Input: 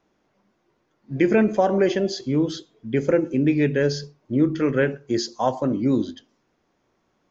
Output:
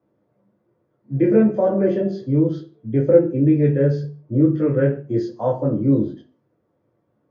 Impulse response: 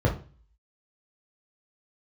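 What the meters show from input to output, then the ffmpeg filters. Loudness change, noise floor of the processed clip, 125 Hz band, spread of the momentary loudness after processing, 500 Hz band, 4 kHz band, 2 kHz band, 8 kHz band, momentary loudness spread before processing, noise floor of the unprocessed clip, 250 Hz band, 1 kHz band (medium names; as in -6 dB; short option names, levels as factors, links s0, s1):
+3.0 dB, -69 dBFS, +7.5 dB, 9 LU, +3.0 dB, under -15 dB, -8.5 dB, no reading, 8 LU, -70 dBFS, +3.0 dB, -4.5 dB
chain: -filter_complex "[0:a]highpass=170[s0];[1:a]atrim=start_sample=2205,afade=t=out:st=0.27:d=0.01,atrim=end_sample=12348[s1];[s0][s1]afir=irnorm=-1:irlink=0,volume=0.15"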